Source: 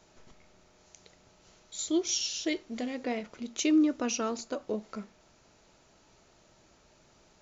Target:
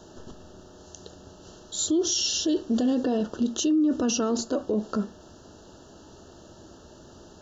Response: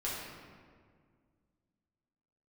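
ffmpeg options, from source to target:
-af "asuperstop=centerf=2200:order=20:qfactor=2.5,equalizer=f=310:w=0.88:g=9,alimiter=level_in=1.33:limit=0.0631:level=0:latency=1:release=22,volume=0.75,equalizer=f=81:w=2.4:g=10,volume=2.82"

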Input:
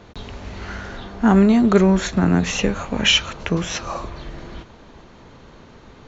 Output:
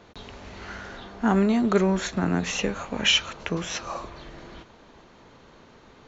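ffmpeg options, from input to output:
-af "lowshelf=f=180:g=-8,volume=0.596"

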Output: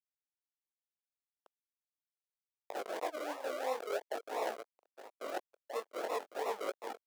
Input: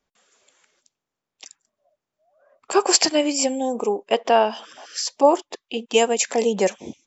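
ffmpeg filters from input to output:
-af "aecho=1:1:463:0.075,afwtdn=0.0501,highshelf=f=2300:g=5,acrusher=samples=40:mix=1:aa=0.000001:lfo=1:lforange=24:lforate=2.9,aeval=exprs='(mod(4.73*val(0)+1,2)-1)/4.73':c=same,flanger=delay=17.5:depth=6.4:speed=0.43,aeval=exprs='sgn(val(0))*max(abs(val(0))-0.00447,0)':c=same,tiltshelf=f=970:g=8,areverse,acompressor=threshold=0.0224:ratio=6,areverse,highpass=f=550:w=0.5412,highpass=f=550:w=1.3066,volume=2.11"

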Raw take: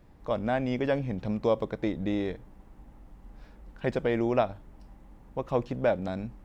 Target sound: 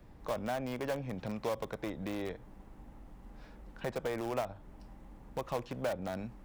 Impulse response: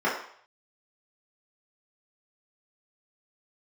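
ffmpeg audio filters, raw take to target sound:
-filter_complex "[0:a]acrossover=split=130|590|1400[s0][s1][s2][s3];[s0]acompressor=threshold=0.00316:ratio=4[s4];[s1]acompressor=threshold=0.00891:ratio=4[s5];[s2]acompressor=threshold=0.0224:ratio=4[s6];[s3]acompressor=threshold=0.00316:ratio=4[s7];[s4][s5][s6][s7]amix=inputs=4:normalize=0,asplit=2[s8][s9];[s9]aeval=exprs='(mod(31.6*val(0)+1,2)-1)/31.6':c=same,volume=0.316[s10];[s8][s10]amix=inputs=2:normalize=0,volume=0.841"

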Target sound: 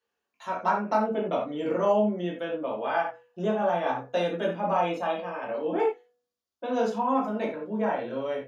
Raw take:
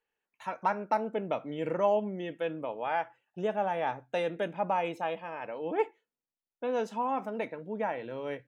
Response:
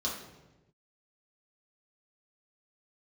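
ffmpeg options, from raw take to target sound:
-filter_complex "[0:a]bandreject=f=243.8:t=h:w=4,bandreject=f=487.6:t=h:w=4,bandreject=f=731.4:t=h:w=4,bandreject=f=975.2:t=h:w=4,bandreject=f=1219:t=h:w=4,bandreject=f=1462.8:t=h:w=4,bandreject=f=1706.6:t=h:w=4,bandreject=f=1950.4:t=h:w=4[s0];[1:a]atrim=start_sample=2205,atrim=end_sample=4410[s1];[s0][s1]afir=irnorm=-1:irlink=0"

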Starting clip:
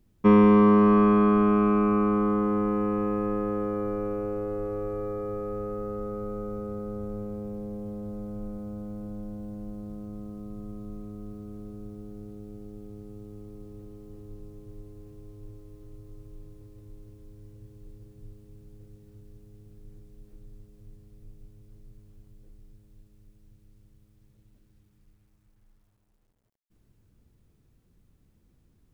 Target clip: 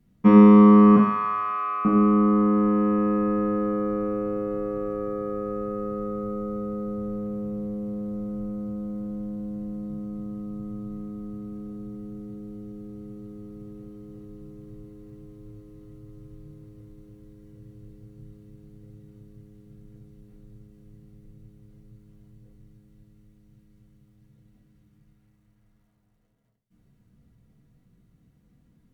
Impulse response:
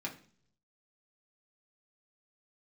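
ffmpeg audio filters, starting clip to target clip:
-filter_complex "[0:a]asettb=1/sr,asplit=3[s0][s1][s2];[s0]atrim=end=0.964[s3];[s1]atrim=start=0.96:end=1.85,asetpts=PTS-STARTPTS,afade=t=in:d=0.004:c=qsin,afade=t=out:st=0.886:d=0.004:c=qsin,highpass=f=790:w=0.5412,highpass=f=790:w=1.3066[s4];[s2]atrim=start=1.846[s5];[s3][s4]acrossfade=d=0.004:c1=hsin:c2=qsin[s6];[s6][s5]acrossfade=d=0.004:c1=qsin:c2=hsin[s7];[1:a]atrim=start_sample=2205,asetrate=36162,aresample=44100[s8];[s7][s8]afir=irnorm=-1:irlink=0"

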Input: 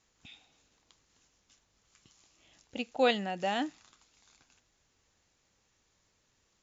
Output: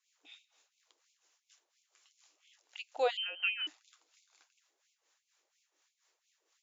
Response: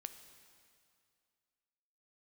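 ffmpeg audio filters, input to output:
-filter_complex "[0:a]asettb=1/sr,asplit=3[s0][s1][s2];[s0]atrim=end=3.174[s3];[s1]atrim=start=3.17:end=3.67,asetpts=PTS-STARTPTS,afade=t=in:d=0.004:c=qsin,afade=t=out:st=0.496:d=0.004:c=qsin,lowpass=f=2800:t=q:w=0.5098,lowpass=f=2800:t=q:w=0.6013,lowpass=f=2800:t=q:w=0.9,lowpass=f=2800:t=q:w=2.563,afreqshift=-3300[s4];[s2]atrim=start=3.666[s5];[s3][s4]acrossfade=d=0.004:c1=hsin:c2=qsin[s6];[s6][s5]acrossfade=d=0.004:c1=qsin:c2=hsin,acrossover=split=770[s7][s8];[s7]aeval=exprs='val(0)*(1-0.7/2+0.7/2*cos(2*PI*4.2*n/s))':c=same[s9];[s8]aeval=exprs='val(0)*(1-0.7/2-0.7/2*cos(2*PI*4.2*n/s))':c=same[s10];[s9][s10]amix=inputs=2:normalize=0,afftfilt=real='re*gte(b*sr/1024,260*pow(2200/260,0.5+0.5*sin(2*PI*2.9*pts/sr)))':imag='im*gte(b*sr/1024,260*pow(2200/260,0.5+0.5*sin(2*PI*2.9*pts/sr)))':win_size=1024:overlap=0.75"

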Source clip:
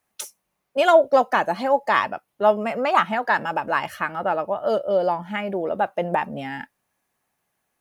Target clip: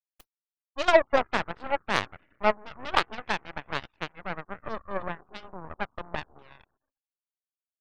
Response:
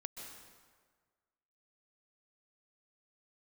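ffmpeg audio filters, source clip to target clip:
-filter_complex "[0:a]asplit=2[s0][s1];[1:a]atrim=start_sample=2205,asetrate=25578,aresample=44100,lowshelf=f=420:g=4.5[s2];[s1][s2]afir=irnorm=-1:irlink=0,volume=0.224[s3];[s0][s3]amix=inputs=2:normalize=0,afftfilt=real='re*gte(hypot(re,im),0.0355)':imag='im*gte(hypot(re,im),0.0355)':win_size=1024:overlap=0.75,aeval=exprs='0.794*(cos(1*acos(clip(val(0)/0.794,-1,1)))-cos(1*PI/2))+0.224*(cos(3*acos(clip(val(0)/0.794,-1,1)))-cos(3*PI/2))+0.0178*(cos(7*acos(clip(val(0)/0.794,-1,1)))-cos(7*PI/2))+0.0251*(cos(8*acos(clip(val(0)/0.794,-1,1)))-cos(8*PI/2))':c=same,volume=0.891"

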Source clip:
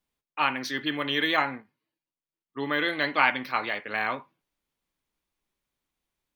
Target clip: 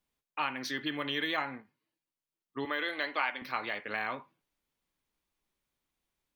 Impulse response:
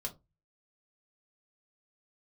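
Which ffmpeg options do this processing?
-filter_complex "[0:a]asettb=1/sr,asplit=3[s0][s1][s2];[s0]atrim=end=2.654[s3];[s1]atrim=start=2.65:end=3.42,asetpts=PTS-STARTPTS,afade=t=in:d=0.004:c=qsin,afade=t=out:st=0.766:d=0.004:c=qsin,highpass=360[s4];[s2]atrim=start=3.416[s5];[s3][s4]acrossfade=d=0.004:c1=hsin:c2=qsin[s6];[s6][s5]acrossfade=d=0.004:c1=qsin:c2=hsin,acompressor=threshold=0.0224:ratio=2,volume=0.891"

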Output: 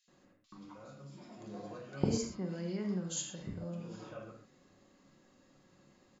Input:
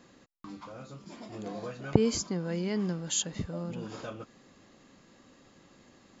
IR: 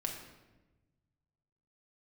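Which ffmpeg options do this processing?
-filter_complex "[0:a]acrossover=split=2700[s0][s1];[s0]adelay=80[s2];[s2][s1]amix=inputs=2:normalize=0[s3];[1:a]atrim=start_sample=2205,afade=t=out:st=0.17:d=0.01,atrim=end_sample=7938,asetrate=39690,aresample=44100[s4];[s3][s4]afir=irnorm=-1:irlink=0,volume=0.376"

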